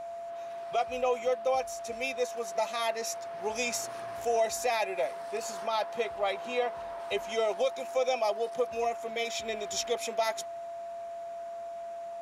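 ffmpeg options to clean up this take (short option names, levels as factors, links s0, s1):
-af "bandreject=f=680:w=30"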